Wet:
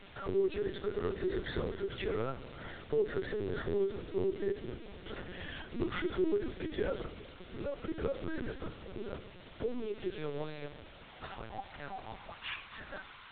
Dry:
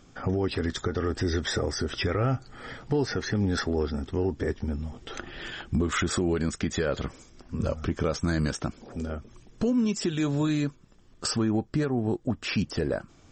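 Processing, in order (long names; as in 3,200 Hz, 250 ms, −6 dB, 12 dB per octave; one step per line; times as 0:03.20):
low-shelf EQ 140 Hz −4 dB
in parallel at +2 dB: downward compressor 8 to 1, threshold −37 dBFS, peak gain reduction 14.5 dB
on the sum: bit-depth reduction 6 bits, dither triangular
flanger 0.41 Hz, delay 4.8 ms, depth 9.5 ms, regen +71%
high-pass filter sweep 330 Hz → 1,100 Hz, 0:09.38–0:12.72
on a send: delay with a low-pass on its return 386 ms, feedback 61%, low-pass 550 Hz, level −19.5 dB
on the sum: rectangular room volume 3,900 cubic metres, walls furnished, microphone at 1.2 metres
linear-prediction vocoder at 8 kHz pitch kept
level −8.5 dB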